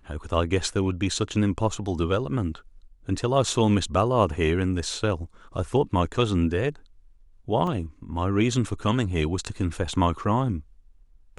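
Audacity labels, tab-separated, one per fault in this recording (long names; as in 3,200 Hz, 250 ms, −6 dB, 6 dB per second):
7.670000	7.670000	drop-out 3.2 ms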